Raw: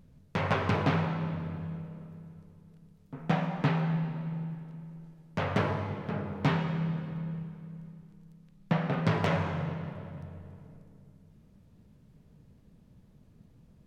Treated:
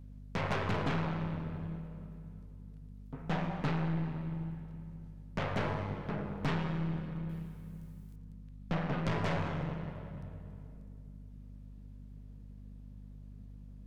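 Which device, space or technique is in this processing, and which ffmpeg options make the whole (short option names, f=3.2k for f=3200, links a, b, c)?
valve amplifier with mains hum: -filter_complex "[0:a]asettb=1/sr,asplit=3[a][b][c];[a]atrim=end=7.294[d];[b]atrim=start=7.29:end=8.16,asetpts=PTS-STARTPTS,afade=t=in:d=0.004:c=qsin,afade=t=out:st=0.866:d=0.004:c=qsin,aemphasis=mode=production:type=75fm[e];[c]atrim=start=8.156[f];[d][e]acrossfade=d=0.004:c1=hsin:c2=qsin[g];[g][f]acrossfade=d=0.004:c1=qsin:c2=hsin,aeval=exprs='(tanh(25.1*val(0)+0.6)-tanh(0.6))/25.1':c=same,aeval=exprs='val(0)+0.00398*(sin(2*PI*50*n/s)+sin(2*PI*2*50*n/s)/2+sin(2*PI*3*50*n/s)/3+sin(2*PI*4*50*n/s)/4+sin(2*PI*5*50*n/s)/5)':c=same"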